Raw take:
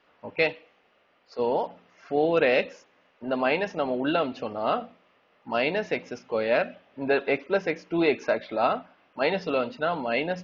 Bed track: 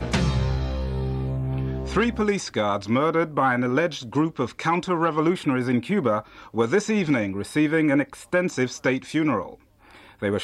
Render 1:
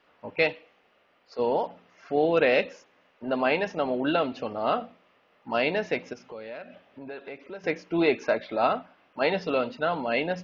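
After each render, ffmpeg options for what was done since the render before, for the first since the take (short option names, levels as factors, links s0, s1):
-filter_complex "[0:a]asettb=1/sr,asplit=3[s0][s1][s2];[s0]atrim=end=6.134[s3];[s1]atrim=start=6.13:end=7.64,asetpts=PTS-STARTPTS,afade=t=in:d=0.004:c=qsin,afade=t=out:st=1.506:d=0.004:c=qsin,acompressor=threshold=0.00891:ratio=3:attack=3.2:release=140:knee=1:detection=peak[s4];[s2]atrim=start=7.636[s5];[s3][s4]acrossfade=d=0.004:c1=hsin:c2=qsin[s6];[s6][s5]acrossfade=d=0.004:c1=qsin:c2=hsin"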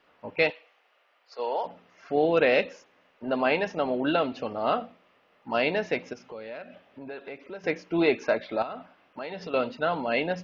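-filter_complex "[0:a]asettb=1/sr,asplit=3[s0][s1][s2];[s0]atrim=end=0.504[s3];[s1]atrim=start=0.5:end=1.65,asetpts=PTS-STARTPTS,afade=t=in:d=0.004:c=qsin,afade=t=out:st=1.146:d=0.004:c=qsin,highpass=620[s4];[s2]atrim=start=1.646[s5];[s3][s4]acrossfade=d=0.004:c1=hsin:c2=qsin[s6];[s6][s5]acrossfade=d=0.004:c1=qsin:c2=hsin,asettb=1/sr,asplit=3[s7][s8][s9];[s7]atrim=end=8.624[s10];[s8]atrim=start=8.62:end=9.54,asetpts=PTS-STARTPTS,afade=t=in:d=0.004:c=qsin,afade=t=out:st=0.916:d=0.004:c=qsin,acompressor=threshold=0.0224:ratio=5:attack=3.2:release=140:knee=1:detection=peak[s11];[s9]atrim=start=9.536[s12];[s10][s11]acrossfade=d=0.004:c1=hsin:c2=qsin[s13];[s13][s12]acrossfade=d=0.004:c1=qsin:c2=hsin"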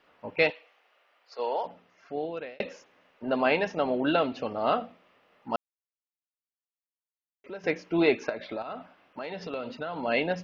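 -filter_complex "[0:a]asettb=1/sr,asplit=3[s0][s1][s2];[s0]atrim=end=8.294[s3];[s1]atrim=start=8.29:end=10.03,asetpts=PTS-STARTPTS,afade=t=in:d=0.004:c=qsin,afade=t=out:st=1.736:d=0.004:c=qsin,acompressor=threshold=0.0316:ratio=6:attack=3.2:release=140:knee=1:detection=peak[s4];[s2]atrim=start=10.026[s5];[s3][s4]acrossfade=d=0.004:c1=hsin:c2=qsin[s6];[s6][s5]acrossfade=d=0.004:c1=qsin:c2=hsin,asplit=4[s7][s8][s9][s10];[s7]atrim=end=2.6,asetpts=PTS-STARTPTS,afade=t=out:st=1.45:d=1.15[s11];[s8]atrim=start=2.6:end=5.56,asetpts=PTS-STARTPTS,afade=t=in:d=0.004:c=hsin,afade=t=out:st=2.956:d=0.004:c=hsin[s12];[s9]atrim=start=5.56:end=7.44,asetpts=PTS-STARTPTS,volume=0[s13];[s10]atrim=start=7.44,asetpts=PTS-STARTPTS,afade=t=in:d=0.004:c=hsin[s14];[s11][s12][s13][s14]concat=n=4:v=0:a=1"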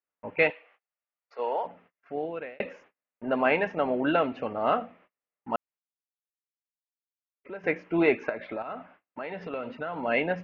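-af "agate=range=0.0178:threshold=0.00158:ratio=16:detection=peak,highshelf=f=3200:t=q:w=1.5:g=-12.5"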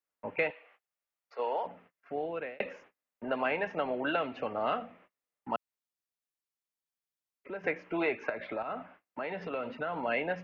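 -filter_complex "[0:a]acrossover=split=130|440|1800[s0][s1][s2][s3];[s0]acompressor=threshold=0.00141:ratio=4[s4];[s1]acompressor=threshold=0.00794:ratio=4[s5];[s2]acompressor=threshold=0.0282:ratio=4[s6];[s3]acompressor=threshold=0.0158:ratio=4[s7];[s4][s5][s6][s7]amix=inputs=4:normalize=0"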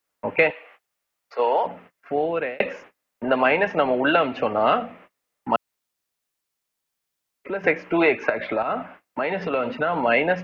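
-af "volume=3.98"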